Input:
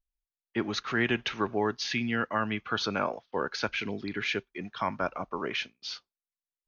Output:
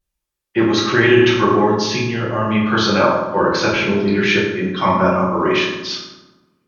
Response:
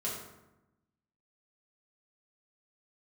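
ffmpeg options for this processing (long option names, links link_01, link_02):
-filter_complex "[0:a]asettb=1/sr,asplit=3[link_01][link_02][link_03];[link_01]atrim=end=1.644[link_04];[link_02]atrim=start=1.64:end=2.54,asetpts=PTS-STARTPTS,afade=type=in:duration=0.004:curve=qsin,afade=type=out:start_time=0.896:duration=0.004:curve=qsin,equalizer=frequency=1500:width=0.72:gain=-10[link_05];[link_03]atrim=start=2.536[link_06];[link_04][link_05]acrossfade=duration=0.004:curve1=hsin:curve2=qsin[link_07];[link_07][link_06]acrossfade=duration=0.004:curve1=qsin:curve2=hsin[link_08];[1:a]atrim=start_sample=2205,asetrate=37485,aresample=44100[link_09];[link_08][link_09]afir=irnorm=-1:irlink=0,alimiter=level_in=11.5dB:limit=-1dB:release=50:level=0:latency=1,volume=-1dB"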